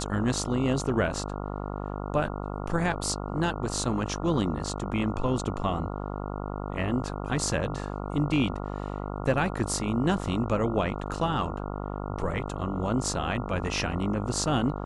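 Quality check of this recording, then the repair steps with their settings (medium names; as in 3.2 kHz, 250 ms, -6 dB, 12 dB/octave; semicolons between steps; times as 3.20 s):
buzz 50 Hz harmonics 28 -34 dBFS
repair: de-hum 50 Hz, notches 28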